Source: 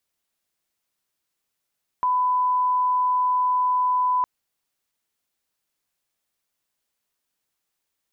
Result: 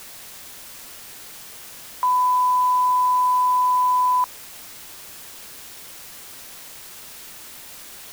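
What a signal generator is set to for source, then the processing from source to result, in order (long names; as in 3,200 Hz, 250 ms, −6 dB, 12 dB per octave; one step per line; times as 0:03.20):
line-up tone −18 dBFS 2.21 s
high-pass filter 810 Hz 12 dB per octave
in parallel at −4 dB: bit-depth reduction 6 bits, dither triangular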